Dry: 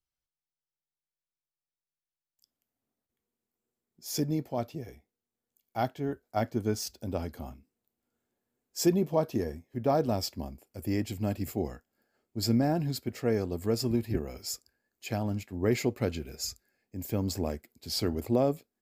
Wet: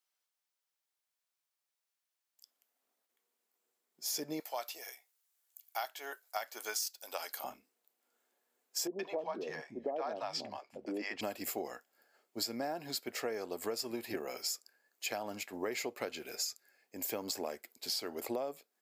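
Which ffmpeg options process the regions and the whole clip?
ffmpeg -i in.wav -filter_complex "[0:a]asettb=1/sr,asplit=3[link_01][link_02][link_03];[link_01]atrim=end=4.404[link_04];[link_02]atrim=start=4.4:end=7.44,asetpts=PTS-STARTPTS,afade=type=in:duration=0.004:curve=qsin,afade=type=out:start_time=3.036:duration=0.004:curve=qsin,highpass=900,aemphasis=mode=production:type=cd[link_05];[link_03]atrim=start=7.436[link_06];[link_04][link_05]acrossfade=duration=0.004:curve1=hsin:curve2=qsin[link_07];[link_07][link_06]acrossfade=duration=0.004:curve1=qsin:curve2=hsin,asettb=1/sr,asplit=3[link_08][link_09][link_10];[link_08]atrim=end=8.874[link_11];[link_09]atrim=start=8.87:end=11.21,asetpts=PTS-STARTPTS,afade=type=in:duration=0.004:curve=qsin,afade=type=out:start_time=2.336:duration=0.004:curve=qsin,highpass=120,lowpass=3800,acrossover=split=180|680[link_12][link_13][link_14];[link_14]adelay=120[link_15];[link_12]adelay=360[link_16];[link_16][link_13][link_15]amix=inputs=3:normalize=0,atrim=end_sample=103194[link_17];[link_10]atrim=start=11.206[link_18];[link_11][link_17]acrossfade=duration=0.004:curve1=hsin:curve2=qsin[link_19];[link_19][link_18]acrossfade=duration=0.004:curve1=qsin:curve2=hsin,highpass=580,acompressor=threshold=-41dB:ratio=10,volume=7dB" out.wav

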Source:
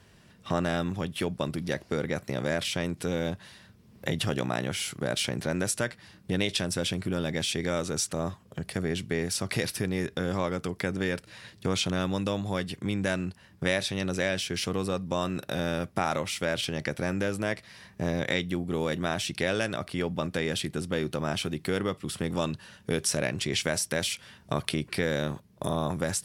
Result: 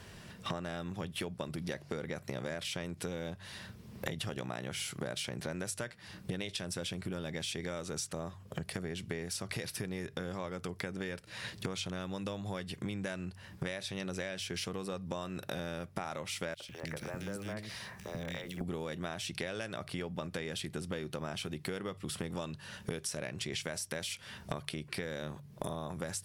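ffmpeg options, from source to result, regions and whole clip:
ffmpeg -i in.wav -filter_complex "[0:a]asettb=1/sr,asplit=3[link_01][link_02][link_03];[link_01]atrim=end=16.544[link_04];[link_02]atrim=start=16.54:end=18.61,asetpts=PTS-STARTPTS,afade=type=in:duration=0.004:curve=qsin,afade=type=out:start_time=2.066:duration=0.004:curve=qsin,acompressor=threshold=-39dB:ratio=5:attack=3.2:release=140:knee=1:detection=peak,acrusher=bits=7:mode=log:mix=0:aa=0.000001,acrossover=split=330|2000[link_05][link_06][link_07];[link_06]adelay=60[link_08];[link_05]adelay=150[link_09];[link_09][link_08][link_07]amix=inputs=3:normalize=0,atrim=end_sample=91287[link_10];[link_03]atrim=start=18.606[link_11];[link_04][link_10]acrossfade=duration=0.004:curve1=hsin:curve2=qsin[link_12];[link_12][link_11]acrossfade=duration=0.004:curve1=qsin:curve2=hsin,equalizer=frequency=270:width_type=o:width=0.57:gain=-3.5,bandreject=frequency=47.97:width_type=h:width=4,bandreject=frequency=95.94:width_type=h:width=4,bandreject=frequency=143.91:width_type=h:width=4,acompressor=threshold=-42dB:ratio=8,volume=6.5dB" out.wav

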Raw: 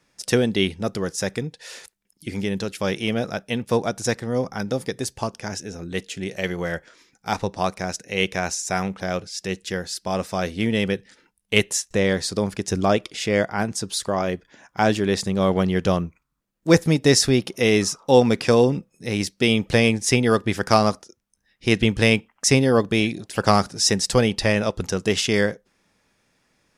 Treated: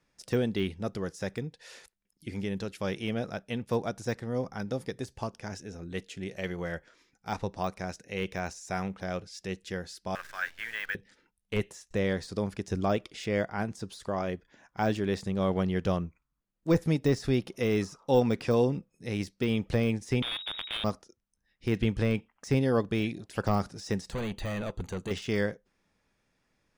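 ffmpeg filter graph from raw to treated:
ffmpeg -i in.wav -filter_complex "[0:a]asettb=1/sr,asplit=3[link_01][link_02][link_03];[link_01]atrim=end=10.154[link_04];[link_02]atrim=start=10.15:end=10.95,asetpts=PTS-STARTPTS,afade=type=in:duration=0.004:curve=qsin,afade=type=out:start_time=0.796:duration=0.004:curve=qsin,highpass=frequency=1600:width_type=q:width=8.5,highshelf=frequency=4400:gain=-8.5,acrusher=bits=7:dc=4:mix=0:aa=0.000001[link_05];[link_03]atrim=start=10.946[link_06];[link_04][link_05]acrossfade=duration=0.004:curve1=hsin:curve2=qsin[link_07];[link_07][link_06]acrossfade=duration=0.004:curve1=qsin:curve2=hsin,asettb=1/sr,asplit=3[link_08][link_09][link_10];[link_08]atrim=end=20.224[link_11];[link_09]atrim=start=20.22:end=20.84,asetpts=PTS-STARTPTS,afade=type=in:duration=0.004:curve=qsin,afade=type=out:start_time=0.616:duration=0.004:curve=qsin,tiltshelf=frequency=1100:gain=8,acrusher=bits=3:dc=4:mix=0:aa=0.000001,lowpass=frequency=3200:width_type=q:width=0.5098,lowpass=frequency=3200:width_type=q:width=0.6013,lowpass=frequency=3200:width_type=q:width=0.9,lowpass=frequency=3200:width_type=q:width=2.563,afreqshift=-3800[link_12];[link_10]atrim=start=20.836[link_13];[link_11][link_12]acrossfade=duration=0.004:curve1=hsin:curve2=qsin[link_14];[link_14][link_13]acrossfade=duration=0.004:curve1=qsin:curve2=hsin,asettb=1/sr,asplit=3[link_15][link_16][link_17];[link_15]atrim=end=24.124[link_18];[link_16]atrim=start=24.12:end=25.11,asetpts=PTS-STARTPTS,afade=type=in:duration=0.004:curve=qsin,afade=type=out:start_time=0.986:duration=0.004:curve=qsin,volume=22.5dB,asoftclip=hard,volume=-22.5dB,asuperstop=centerf=5300:order=8:qfactor=4.6[link_19];[link_17]atrim=start=25.106[link_20];[link_18][link_19]acrossfade=duration=0.004:curve1=hsin:curve2=qsin[link_21];[link_21][link_20]acrossfade=duration=0.004:curve1=qsin:curve2=hsin,highshelf=frequency=4900:gain=-5.5,deesser=0.7,lowshelf=frequency=66:gain=8.5,volume=-8.5dB" out.wav

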